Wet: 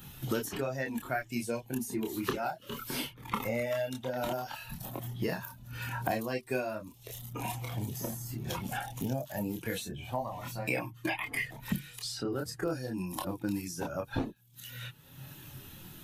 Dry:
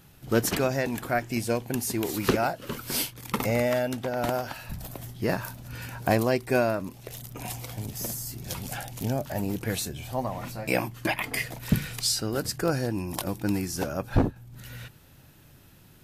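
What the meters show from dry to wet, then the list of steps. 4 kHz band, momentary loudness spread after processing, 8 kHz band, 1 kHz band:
-7.5 dB, 10 LU, -9.5 dB, -5.5 dB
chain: expander on every frequency bin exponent 1.5; chorus voices 6, 0.17 Hz, delay 27 ms, depth 4.8 ms; three bands compressed up and down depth 100%

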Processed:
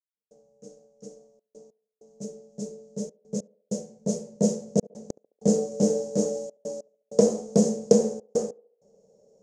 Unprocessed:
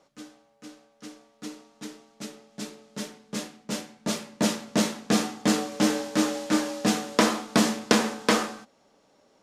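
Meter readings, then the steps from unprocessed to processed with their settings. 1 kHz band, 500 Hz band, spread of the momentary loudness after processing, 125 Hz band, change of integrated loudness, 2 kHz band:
-13.5 dB, +5.0 dB, 18 LU, +2.5 dB, -0.5 dB, under -25 dB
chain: FFT filter 110 Hz 0 dB, 200 Hz +6 dB, 290 Hz -15 dB, 460 Hz +11 dB, 1.2 kHz -26 dB, 2.3 kHz -27 dB, 3.7 kHz -24 dB, 6.6 kHz +2 dB, 13 kHz -23 dB; trance gate "..xxxxxxx.x" 97 bpm -60 dB; on a send: band-passed feedback delay 71 ms, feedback 48%, band-pass 550 Hz, level -21.5 dB

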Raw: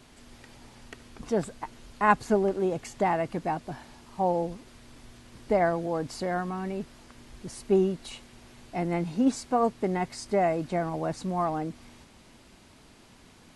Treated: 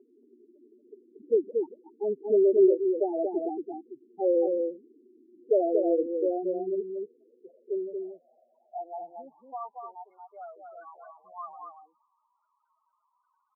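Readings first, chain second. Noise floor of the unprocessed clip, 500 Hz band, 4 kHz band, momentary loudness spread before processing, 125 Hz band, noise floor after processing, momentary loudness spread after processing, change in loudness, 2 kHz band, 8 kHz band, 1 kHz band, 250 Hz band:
-55 dBFS, +2.5 dB, under -35 dB, 18 LU, under -25 dB, -76 dBFS, 22 LU, +1.0 dB, under -30 dB, under -35 dB, -10.5 dB, -3.0 dB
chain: tracing distortion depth 0.49 ms; high-pass 160 Hz 12 dB/octave; treble shelf 3.8 kHz -6.5 dB; in parallel at -1 dB: peak limiter -20 dBFS, peak gain reduction 11 dB; on the sum: band-pass sweep 360 Hz -> 1.1 kHz, 6.50–10.22 s; loudest bins only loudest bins 4; band-pass sweep 560 Hz -> 3.5 kHz, 6.73–10.05 s; on a send: delay 231 ms -4.5 dB; on the sum: trim +8.5 dB

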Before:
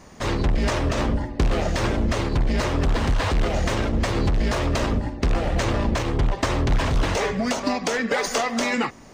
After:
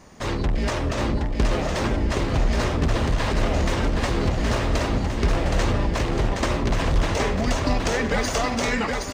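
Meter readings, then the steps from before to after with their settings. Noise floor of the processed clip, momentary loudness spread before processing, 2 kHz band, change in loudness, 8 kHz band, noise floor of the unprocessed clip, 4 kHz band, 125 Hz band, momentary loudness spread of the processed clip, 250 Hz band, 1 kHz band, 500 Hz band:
-27 dBFS, 2 LU, -0.5 dB, 0.0 dB, -0.5 dB, -36 dBFS, 0.0 dB, 0.0 dB, 2 LU, -0.5 dB, 0.0 dB, 0.0 dB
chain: bouncing-ball echo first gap 770 ms, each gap 0.85×, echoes 5; trim -2 dB

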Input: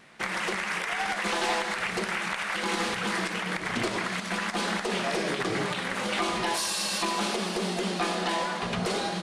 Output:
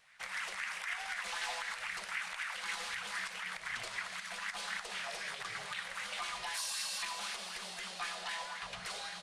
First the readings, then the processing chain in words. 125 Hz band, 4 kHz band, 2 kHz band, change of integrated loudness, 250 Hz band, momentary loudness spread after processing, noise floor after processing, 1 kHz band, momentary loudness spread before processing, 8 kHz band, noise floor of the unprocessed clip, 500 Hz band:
-24.5 dB, -9.0 dB, -8.5 dB, -10.5 dB, -29.0 dB, 4 LU, -47 dBFS, -13.0 dB, 3 LU, -8.0 dB, -35 dBFS, -21.0 dB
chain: amplifier tone stack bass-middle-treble 10-0-10; sweeping bell 3.9 Hz 520–2000 Hz +9 dB; trim -7.5 dB

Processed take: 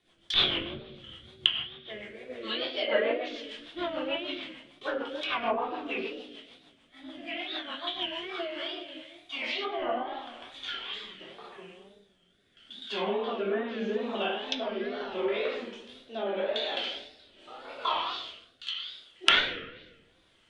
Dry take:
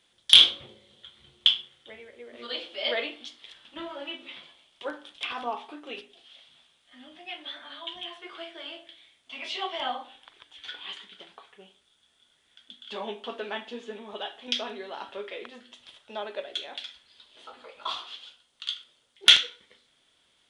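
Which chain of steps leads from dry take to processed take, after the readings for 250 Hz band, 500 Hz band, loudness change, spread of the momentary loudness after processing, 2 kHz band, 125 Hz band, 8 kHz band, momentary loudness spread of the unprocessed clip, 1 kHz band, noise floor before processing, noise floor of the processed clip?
+7.5 dB, +7.0 dB, -6.0 dB, 19 LU, +1.0 dB, no reading, under -10 dB, 22 LU, +3.0 dB, -68 dBFS, -65 dBFS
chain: simulated room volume 530 m³, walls mixed, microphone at 3.2 m; wow and flutter 120 cents; low-pass that closes with the level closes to 1.5 kHz, closed at -21 dBFS; rotary cabinet horn 6.7 Hz, later 0.8 Hz, at 8.04 s; tape noise reduction on one side only decoder only

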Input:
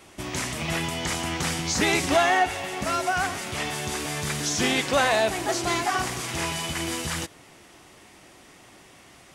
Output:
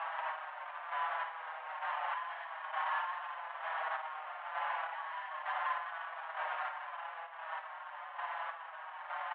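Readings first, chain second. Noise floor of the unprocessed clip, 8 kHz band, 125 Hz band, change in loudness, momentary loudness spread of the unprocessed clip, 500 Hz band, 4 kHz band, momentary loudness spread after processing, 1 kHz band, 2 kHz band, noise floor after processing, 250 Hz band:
-51 dBFS, under -40 dB, under -40 dB, -14.5 dB, 9 LU, -21.0 dB, -23.5 dB, 8 LU, -8.5 dB, -12.5 dB, -48 dBFS, under -40 dB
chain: comb filter that takes the minimum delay 1.5 ms; upward compressor, threshold -29 dBFS; peak limiter -21.5 dBFS, peak gain reduction 11 dB; compression, threshold -34 dBFS, peak gain reduction 8 dB; square tremolo 1.1 Hz, depth 60%, duty 35%; sample-rate reducer 2.1 kHz, jitter 20%; saturation -32 dBFS, distortion -17 dB; on a send: flutter echo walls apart 9.3 m, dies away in 0.32 s; on the sum: mistuned SSB +340 Hz 330–2400 Hz; endless flanger 5.6 ms -0.82 Hz; trim +7.5 dB

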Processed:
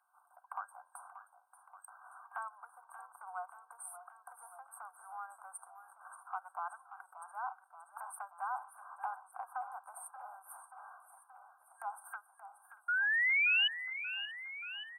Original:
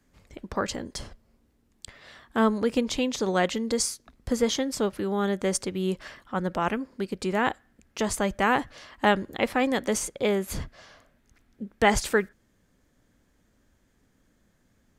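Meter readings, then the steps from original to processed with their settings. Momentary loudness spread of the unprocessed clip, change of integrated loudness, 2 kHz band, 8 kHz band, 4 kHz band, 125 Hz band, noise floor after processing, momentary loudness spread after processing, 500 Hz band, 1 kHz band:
16 LU, -9.5 dB, -3.0 dB, -19.5 dB, -5.5 dB, under -40 dB, -69 dBFS, 25 LU, -32.5 dB, -12.0 dB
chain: rattle on loud lows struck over -30 dBFS, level -23 dBFS; FFT band-reject 1.6–8.3 kHz; treble shelf 6.6 kHz -8.5 dB; compression 5:1, threshold -38 dBFS, peak gain reduction 19 dB; painted sound rise, 12.88–13.68 s, 1.4–3 kHz -33 dBFS; rippled Chebyshev high-pass 720 Hz, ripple 3 dB; delay 635 ms -21.5 dB; modulated delay 580 ms, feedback 65%, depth 66 cents, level -12 dB; trim +4.5 dB

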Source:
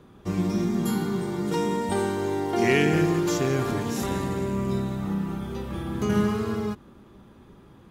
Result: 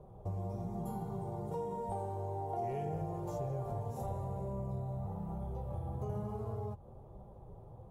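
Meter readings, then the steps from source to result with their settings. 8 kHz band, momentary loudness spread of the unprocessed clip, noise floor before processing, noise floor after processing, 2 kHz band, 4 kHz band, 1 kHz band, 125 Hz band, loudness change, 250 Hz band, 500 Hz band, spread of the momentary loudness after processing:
-24.5 dB, 9 LU, -51 dBFS, -54 dBFS, under -30 dB, under -30 dB, -9.5 dB, -9.0 dB, -14.0 dB, -19.0 dB, -14.0 dB, 14 LU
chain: FFT filter 110 Hz 0 dB, 280 Hz -20 dB, 510 Hz -1 dB, 770 Hz 0 dB, 1.6 kHz -28 dB, 4.8 kHz -28 dB, 10 kHz -17 dB; flange 1.1 Hz, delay 4.9 ms, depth 3.9 ms, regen -46%; dynamic bell 330 Hz, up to -5 dB, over -50 dBFS, Q 1; compression 3:1, threshold -46 dBFS, peak gain reduction 11.5 dB; trim +8 dB

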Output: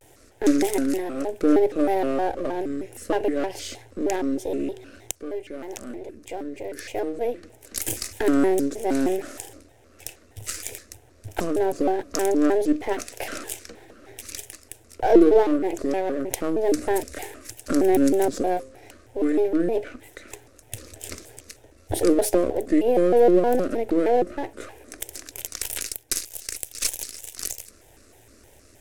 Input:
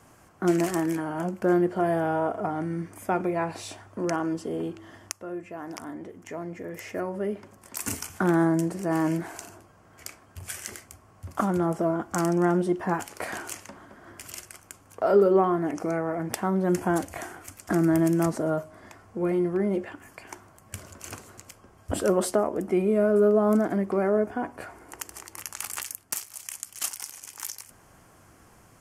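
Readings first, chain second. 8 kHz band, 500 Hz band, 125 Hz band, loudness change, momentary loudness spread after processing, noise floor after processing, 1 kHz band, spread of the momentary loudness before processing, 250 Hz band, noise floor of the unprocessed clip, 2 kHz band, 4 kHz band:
+4.5 dB, +3.5 dB, -9.0 dB, +3.0 dB, 19 LU, -54 dBFS, +1.5 dB, 20 LU, +2.5 dB, -56 dBFS, 0.0 dB, +6.0 dB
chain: partial rectifier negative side -7 dB; static phaser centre 430 Hz, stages 4; vibrato with a chosen wave square 3.2 Hz, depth 250 cents; trim +7.5 dB

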